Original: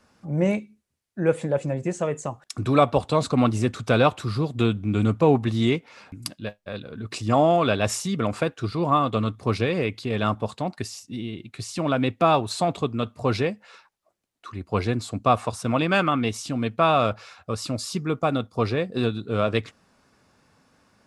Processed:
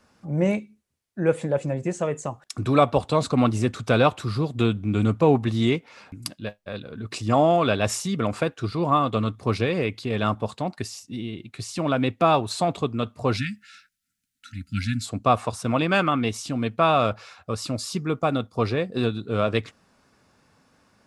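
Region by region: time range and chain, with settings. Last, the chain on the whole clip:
13.37–15.06 brick-wall FIR band-stop 290–1300 Hz + high shelf 5200 Hz +7 dB
whole clip: dry

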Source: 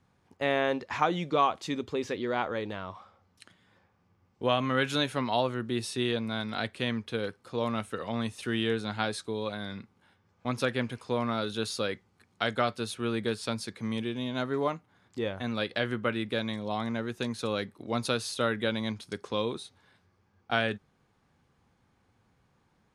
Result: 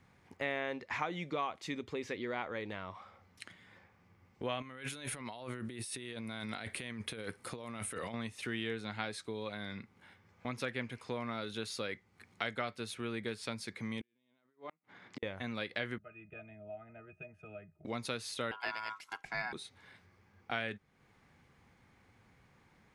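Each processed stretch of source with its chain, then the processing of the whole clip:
4.62–8.14 bell 9600 Hz +13.5 dB 0.49 oct + negative-ratio compressor -39 dBFS
14.01–15.23 negative-ratio compressor -36 dBFS + flipped gate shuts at -28 dBFS, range -42 dB + BPF 180–4900 Hz
15.98–17.85 fixed phaser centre 1100 Hz, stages 6 + octave resonator D#, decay 0.14 s
18.51–19.53 ring modulator 1200 Hz + three-band expander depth 40%
whole clip: compressor 2:1, threshold -48 dBFS; bell 2100 Hz +8.5 dB 0.49 oct; gain +2.5 dB

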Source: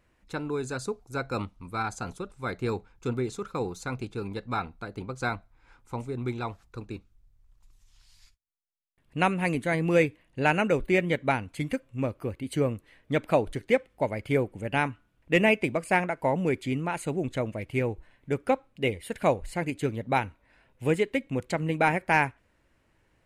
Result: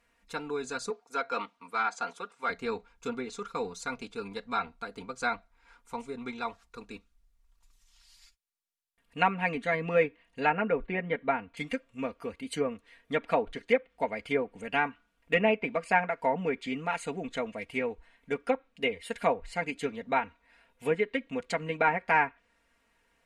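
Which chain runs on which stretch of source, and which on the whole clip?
0.9–2.5 HPF 220 Hz + overdrive pedal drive 10 dB, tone 2300 Hz, clips at -17.5 dBFS
10.49–11.57 LPF 3700 Hz + high shelf 2400 Hz -8.5 dB
whole clip: treble ducked by the level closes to 1900 Hz, closed at -20.5 dBFS; low shelf 490 Hz -11 dB; comb 4.3 ms, depth 80%

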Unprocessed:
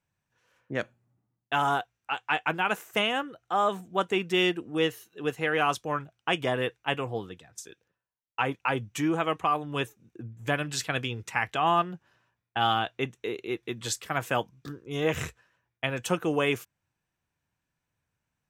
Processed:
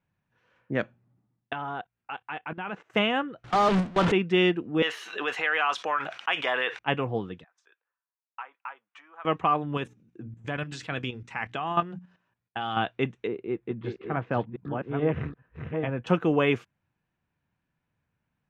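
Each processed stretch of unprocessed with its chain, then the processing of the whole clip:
1.53–2.9 air absorption 110 m + level quantiser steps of 18 dB
3.44–4.12 delta modulation 64 kbps, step -21 dBFS + gate with hold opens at -21 dBFS, closes at -25 dBFS
4.82–6.79 HPF 960 Hz + fast leveller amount 70%
7.44–9.25 tilt -4 dB/oct + compressor 4:1, threshold -28 dBFS + ladder high-pass 890 Hz, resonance 35%
9.77–12.77 bell 8300 Hz +8 dB 1.4 oct + notches 60/120/180/240/300 Hz + level quantiser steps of 11 dB
13.27–16.07 reverse delay 0.431 s, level -5 dB + tape spacing loss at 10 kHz 44 dB
whole clip: LPF 3000 Hz 12 dB/oct; bell 200 Hz +5 dB 1.1 oct; gain +2 dB

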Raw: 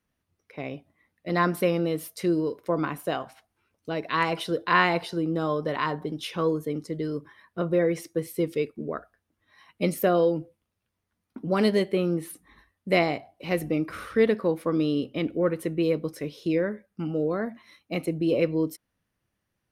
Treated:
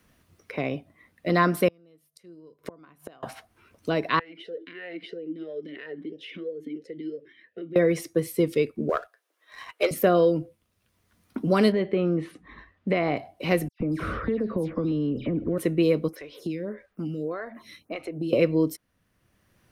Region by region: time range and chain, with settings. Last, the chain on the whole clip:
1.68–3.23 notches 50/100/150 Hz + flipped gate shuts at -29 dBFS, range -35 dB
4.19–7.76 compressor 12:1, threshold -32 dBFS + vowel sweep e-i 3 Hz
8.89–9.91 inverse Chebyshev high-pass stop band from 210 Hz + sample leveller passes 1
11.72–13.17 LPF 2600 Hz + compressor, threshold -23 dBFS
13.68–15.58 tilt -4 dB/oct + compressor 5:1, threshold -30 dBFS + dispersion lows, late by 0.121 s, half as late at 3000 Hz
16.08–18.33 compressor 2:1, threshold -41 dBFS + photocell phaser 1.7 Hz
whole clip: notch 850 Hz, Q 12; three-band squash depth 40%; gain +4.5 dB

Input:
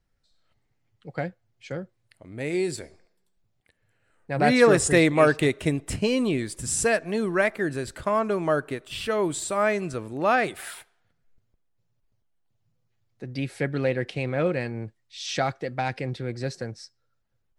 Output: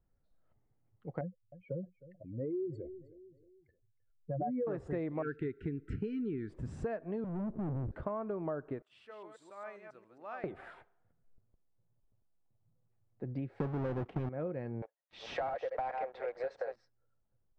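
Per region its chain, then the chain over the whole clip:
1.21–4.67 spectral contrast raised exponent 2.8 + feedback echo 0.311 s, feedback 39%, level -20 dB
5.22–6.5 brick-wall FIR band-stop 470–1300 Hz + bell 1100 Hz +13 dB 0.9 oct
7.24–7.92 ladder low-pass 280 Hz, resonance 25% + sample leveller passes 5
8.82–10.44 reverse delay 0.136 s, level -5 dB + differentiator
13.6–14.29 half-waves squared off + bell 550 Hz -4.5 dB 0.34 oct + sample leveller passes 2
14.82–16.76 reverse delay 0.219 s, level -8 dB + steep high-pass 500 Hz 48 dB/oct + sample leveller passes 3
whole clip: LPF 1000 Hz 12 dB/oct; compressor 6:1, threshold -32 dBFS; gain -2.5 dB

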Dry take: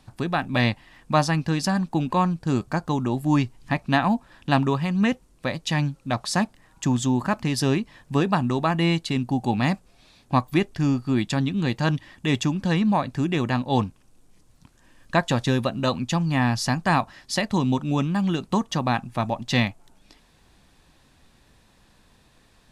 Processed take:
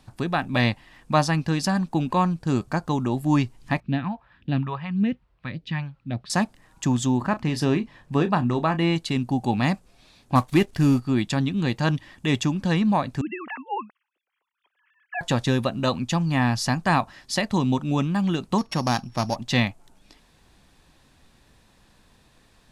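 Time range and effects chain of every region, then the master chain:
3.8–6.3 HPF 57 Hz + phaser stages 2, 1.8 Hz, lowest notch 230–1100 Hz + air absorption 400 m
7.18–8.96 high shelf 4700 Hz -9.5 dB + doubler 33 ms -12 dB
10.35–11 CVSD 64 kbps + sample leveller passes 1
13.21–15.21 sine-wave speech + BPF 390–3000 Hz + bell 570 Hz -9.5 dB 2.4 oct
18.58–19.36 sample sorter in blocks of 8 samples + LPF 6900 Hz
whole clip: dry

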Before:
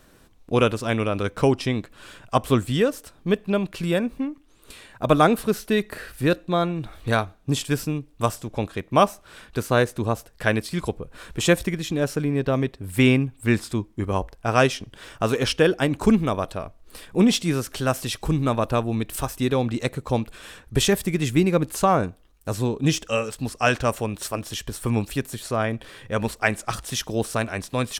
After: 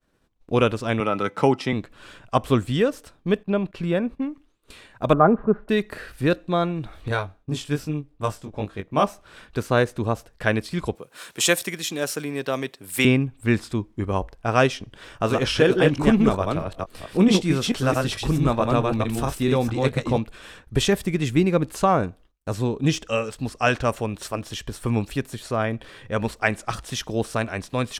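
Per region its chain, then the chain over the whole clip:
1–1.73 HPF 130 Hz 24 dB/oct + small resonant body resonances 860/1300/2000 Hz, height 14 dB, ringing for 85 ms
3.43–4.22 gate -42 dBFS, range -13 dB + high shelf 3800 Hz -10.5 dB
5.13–5.69 LPF 1400 Hz 24 dB/oct + comb 4.9 ms, depth 41%
7.08–9.04 chorus 2.5 Hz, delay 19 ms, depth 2 ms + mismatched tape noise reduction decoder only
10.95–13.05 HPF 99 Hz 24 dB/oct + RIAA curve recording
15.08–20.18 reverse delay 0.22 s, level -2 dB + doubler 21 ms -14 dB
whole clip: expander -44 dBFS; high shelf 8200 Hz -10.5 dB

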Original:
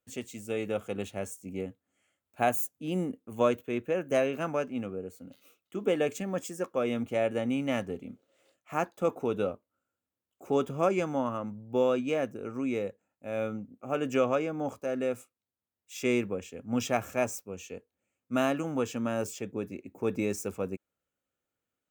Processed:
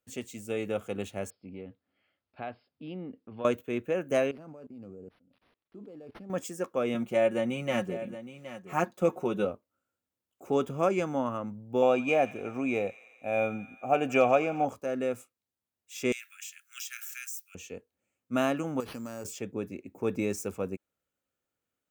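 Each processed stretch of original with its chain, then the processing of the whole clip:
1.3–3.45 compressor 2:1, threshold -43 dBFS + brick-wall FIR low-pass 5300 Hz
4.31–6.3 level quantiser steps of 22 dB + bell 2000 Hz -12.5 dB 2.2 oct + decimation joined by straight lines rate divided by 6×
6.94–9.45 comb 5.5 ms, depth 70% + echo 0.768 s -13 dB
11.82–14.65 hard clip -14.5 dBFS + small resonant body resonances 730/2400 Hz, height 14 dB, ringing for 25 ms + thin delay 88 ms, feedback 73%, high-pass 1400 Hz, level -15 dB
16.12–17.55 steep high-pass 1400 Hz 72 dB/oct + tilt +4.5 dB/oct + compressor 4:1, threshold -38 dBFS
18.8–19.25 compressor 4:1, threshold -36 dBFS + careless resampling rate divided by 6×, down none, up hold
whole clip: dry

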